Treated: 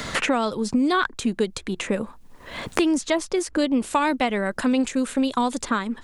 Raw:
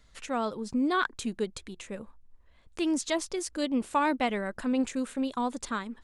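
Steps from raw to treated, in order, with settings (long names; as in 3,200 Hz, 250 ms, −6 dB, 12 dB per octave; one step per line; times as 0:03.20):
multiband upward and downward compressor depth 100%
level +6.5 dB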